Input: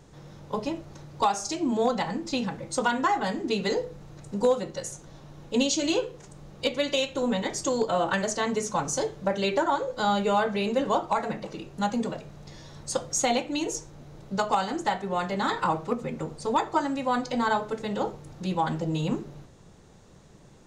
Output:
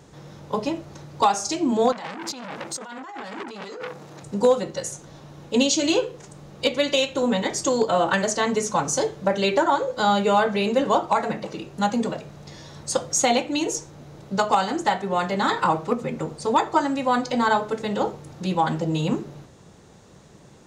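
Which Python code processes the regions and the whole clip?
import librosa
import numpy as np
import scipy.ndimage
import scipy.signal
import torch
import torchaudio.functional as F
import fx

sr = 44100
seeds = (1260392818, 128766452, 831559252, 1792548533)

y = fx.chain(x, sr, fx.highpass(hz=190.0, slope=12),
    fx.over_compress(threshold_db=-36.0, ratio=-1.0),
    fx.transformer_sat(knee_hz=4000.0), at=(1.92, 4.23))
y = scipy.signal.sosfilt(scipy.signal.butter(2, 46.0, 'highpass', fs=sr, output='sos'), y)
y = fx.low_shelf(y, sr, hz=120.0, db=-4.0)
y = y * 10.0 ** (5.0 / 20.0)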